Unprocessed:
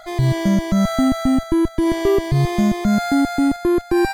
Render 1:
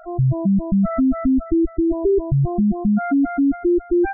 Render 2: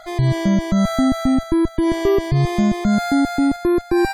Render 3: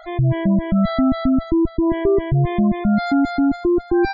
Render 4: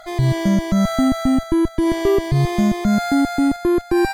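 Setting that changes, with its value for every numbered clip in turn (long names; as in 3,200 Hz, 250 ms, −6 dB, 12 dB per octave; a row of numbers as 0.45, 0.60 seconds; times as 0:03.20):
gate on every frequency bin, under each frame's peak: −10, −40, −20, −55 decibels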